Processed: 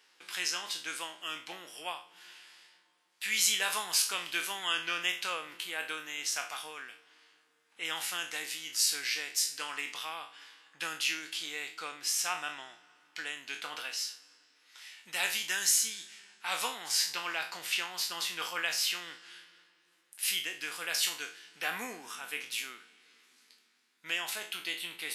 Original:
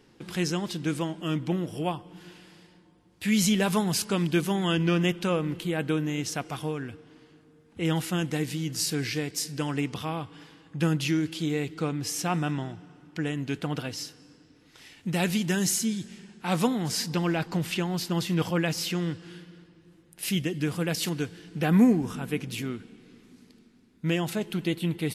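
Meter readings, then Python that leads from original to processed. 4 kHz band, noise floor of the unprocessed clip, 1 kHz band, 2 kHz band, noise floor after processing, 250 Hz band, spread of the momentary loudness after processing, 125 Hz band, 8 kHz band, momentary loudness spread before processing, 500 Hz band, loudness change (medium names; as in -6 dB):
+2.0 dB, -59 dBFS, -5.0 dB, +1.0 dB, -70 dBFS, -27.5 dB, 17 LU, -35.5 dB, +2.0 dB, 11 LU, -16.5 dB, -4.5 dB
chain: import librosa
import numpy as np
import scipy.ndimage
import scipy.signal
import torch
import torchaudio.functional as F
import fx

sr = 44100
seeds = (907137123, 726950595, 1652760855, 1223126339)

y = fx.spec_trails(x, sr, decay_s=0.38)
y = scipy.signal.sosfilt(scipy.signal.butter(2, 1300.0, 'highpass', fs=sr, output='sos'), y)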